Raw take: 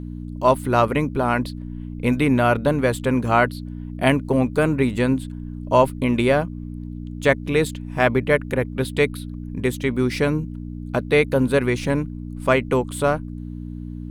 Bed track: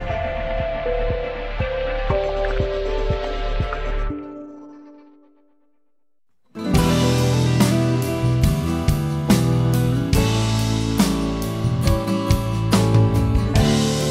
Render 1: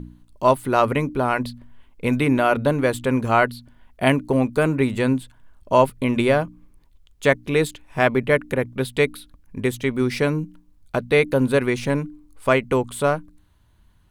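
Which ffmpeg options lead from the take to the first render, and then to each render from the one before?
-af "bandreject=f=60:t=h:w=4,bandreject=f=120:t=h:w=4,bandreject=f=180:t=h:w=4,bandreject=f=240:t=h:w=4,bandreject=f=300:t=h:w=4"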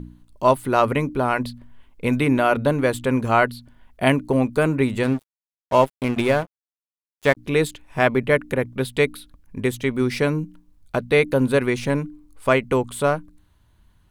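-filter_complex "[0:a]asettb=1/sr,asplit=3[a][b][c];[a]atrim=end=5.034[d];[b]atrim=start=5.03:end=7.37,asetpts=PTS-STARTPTS,afade=t=in:d=0.004:c=qsin,afade=t=out:st=2.336:d=0.004:c=qsin,aeval=exprs='sgn(val(0))*max(abs(val(0))-0.0266,0)':c=same[e];[c]atrim=start=7.366[f];[d][e]acrossfade=d=0.004:c1=hsin:c2=qsin[g];[g][f]acrossfade=d=0.004:c1=qsin:c2=hsin"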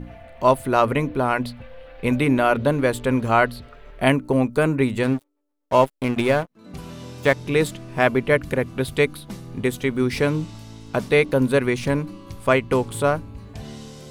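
-filter_complex "[1:a]volume=-20dB[a];[0:a][a]amix=inputs=2:normalize=0"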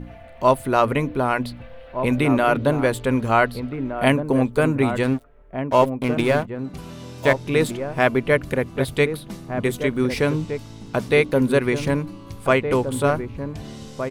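-filter_complex "[0:a]asplit=2[a][b];[b]adelay=1516,volume=-8dB,highshelf=f=4k:g=-34.1[c];[a][c]amix=inputs=2:normalize=0"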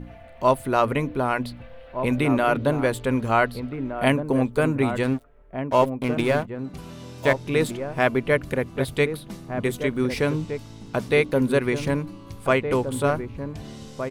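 -af "volume=-2.5dB"

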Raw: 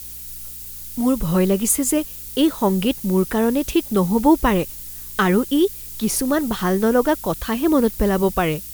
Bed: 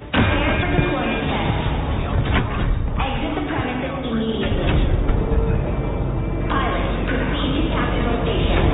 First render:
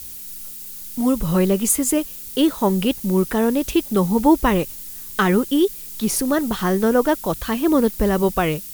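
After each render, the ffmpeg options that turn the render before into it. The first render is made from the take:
-af "bandreject=f=60:t=h:w=4,bandreject=f=120:t=h:w=4"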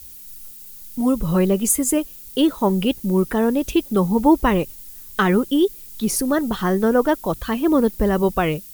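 -af "afftdn=nr=7:nf=-35"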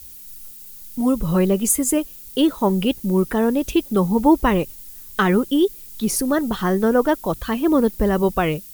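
-af anull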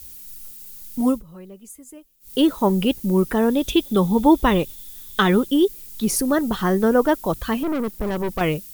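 -filter_complex "[0:a]asettb=1/sr,asplit=3[a][b][c];[a]atrim=end=3.504[d];[b]atrim=start=3.5:end=5.47,asetpts=PTS-STARTPTS,afade=t=in:d=0.004:c=qsin,afade=t=out:st=1.966:d=0.004:c=qsin,equalizer=f=3.5k:w=8:g=15[e];[c]atrim=start=5.466[f];[d][e]acrossfade=d=0.004:c1=hsin:c2=qsin[g];[g][f]acrossfade=d=0.004:c1=qsin:c2=hsin,asettb=1/sr,asplit=3[h][i][j];[h]atrim=end=7.634[k];[i]atrim=start=7.63:end=8.41,asetpts=PTS-STARTPTS,afade=t=in:d=0.004:c=qsin,afade=t=out:st=0.776:d=0.004:c=qsin,aeval=exprs='(tanh(11.2*val(0)+0.55)-tanh(0.55))/11.2':c=same[l];[j]atrim=start=8.406[m];[k][l]acrossfade=d=0.004:c1=hsin:c2=qsin[n];[n][m]acrossfade=d=0.004:c1=qsin:c2=hsin,asplit=3[o][p][q];[o]atrim=end=1.23,asetpts=PTS-STARTPTS,afade=t=out:st=1.09:d=0.14:silence=0.0707946[r];[p]atrim=start=1.23:end=2.2,asetpts=PTS-STARTPTS,volume=-23dB[s];[q]atrim=start=2.2,asetpts=PTS-STARTPTS,afade=t=in:d=0.14:silence=0.0707946[t];[r][s][t]concat=n=3:v=0:a=1"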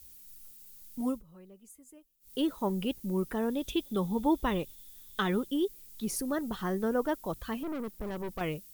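-af "volume=-12.5dB"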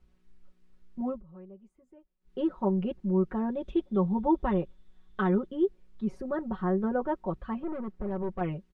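-af "lowpass=1.3k,aecho=1:1:5.4:0.85"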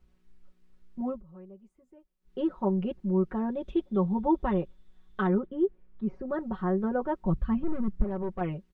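-filter_complex "[0:a]asettb=1/sr,asplit=3[a][b][c];[a]atrim=end=5.274[d];[b]atrim=start=5.27:end=6.3,asetpts=PTS-STARTPTS,afade=t=in:d=0.004:c=qsin,afade=t=out:st=1.026:d=0.004:c=qsin,lowpass=2.1k[e];[c]atrim=start=6.296[f];[d][e]acrossfade=d=0.004:c1=hsin:c2=qsin[g];[g][f]acrossfade=d=0.004:c1=qsin:c2=hsin,asplit=3[h][i][j];[h]afade=t=out:st=7.23:d=0.02[k];[i]asubboost=boost=5:cutoff=220,afade=t=in:st=7.23:d=0.02,afade=t=out:st=8.03:d=0.02[l];[j]afade=t=in:st=8.03:d=0.02[m];[k][l][m]amix=inputs=3:normalize=0"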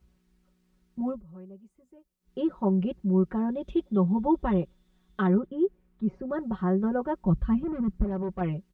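-af "highpass=47,bass=f=250:g=5,treble=f=4k:g=5"

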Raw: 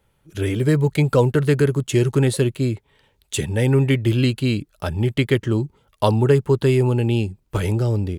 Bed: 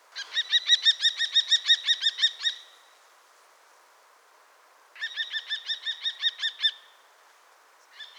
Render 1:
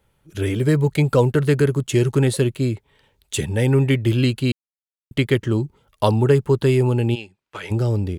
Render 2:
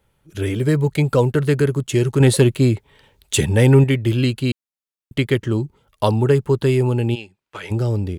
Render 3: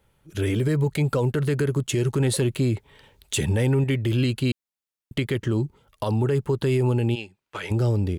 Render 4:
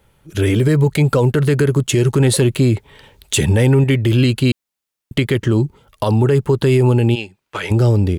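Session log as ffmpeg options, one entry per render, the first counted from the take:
-filter_complex "[0:a]asplit=3[a][b][c];[a]afade=t=out:st=7.14:d=0.02[d];[b]bandpass=f=2.1k:t=q:w=0.75,afade=t=in:st=7.14:d=0.02,afade=t=out:st=7.7:d=0.02[e];[c]afade=t=in:st=7.7:d=0.02[f];[d][e][f]amix=inputs=3:normalize=0,asplit=3[g][h][i];[g]atrim=end=4.52,asetpts=PTS-STARTPTS,afade=t=out:st=4.516:d=0.004:c=hsin[j];[h]atrim=start=4.52:end=5.11,asetpts=PTS-STARTPTS,volume=0[k];[i]atrim=start=5.11,asetpts=PTS-STARTPTS,afade=t=in:d=0.004:c=hsin[l];[j][k][l]concat=n=3:v=0:a=1"
-filter_complex "[0:a]asettb=1/sr,asplit=3[a][b][c];[a]atrim=end=2.204[d];[b]atrim=start=2.2:end=3.84,asetpts=PTS-STARTPTS,afade=t=in:d=0.004:c=qsin,afade=t=out:st=1.636:d=0.004:c=qsin,acontrast=52[e];[c]atrim=start=3.836[f];[d][e]acrossfade=d=0.004:c1=hsin:c2=qsin[g];[g][f]acrossfade=d=0.004:c1=qsin:c2=hsin"
-af "acompressor=threshold=-15dB:ratio=6,alimiter=limit=-15dB:level=0:latency=1:release=47"
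-af "volume=8.5dB"

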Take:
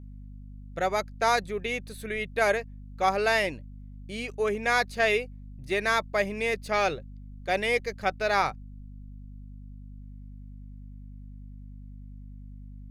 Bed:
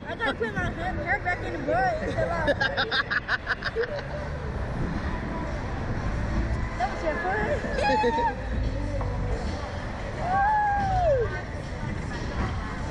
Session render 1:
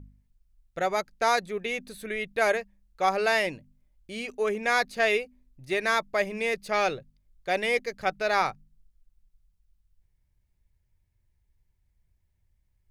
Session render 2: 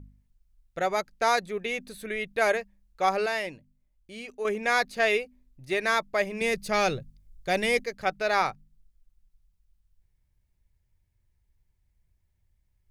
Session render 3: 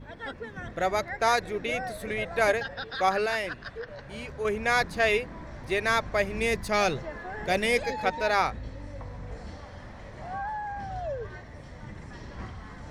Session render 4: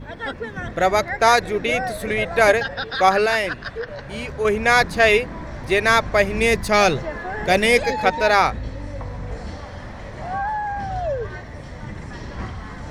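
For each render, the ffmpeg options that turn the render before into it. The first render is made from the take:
-af "bandreject=f=50:t=h:w=4,bandreject=f=100:t=h:w=4,bandreject=f=150:t=h:w=4,bandreject=f=200:t=h:w=4,bandreject=f=250:t=h:w=4"
-filter_complex "[0:a]asettb=1/sr,asplit=3[a][b][c];[a]atrim=end=6.414[d];[b]atrim=start=6.41:end=7.84,asetpts=PTS-STARTPTS,afade=t=in:d=0.004:c=qsin,afade=t=out:st=1.426:d=0.004:c=qsin,bass=f=250:g=10,treble=f=4k:g=6[e];[c]atrim=start=7.836[f];[d][e]acrossfade=d=0.004:c1=hsin:c2=qsin[g];[g][f]acrossfade=d=0.004:c1=qsin:c2=hsin,asplit=3[h][i][j];[h]atrim=end=3.262[k];[i]atrim=start=3.258:end=4.452,asetpts=PTS-STARTPTS,volume=-5.5dB[l];[j]atrim=start=4.448[m];[k][l]acrossfade=d=0.004:c1=hsin:c2=hsin[n];[n][m]acrossfade=d=0.004:c1=hsin:c2=hsin"
-filter_complex "[1:a]volume=-11dB[a];[0:a][a]amix=inputs=2:normalize=0"
-af "volume=9dB,alimiter=limit=-3dB:level=0:latency=1"

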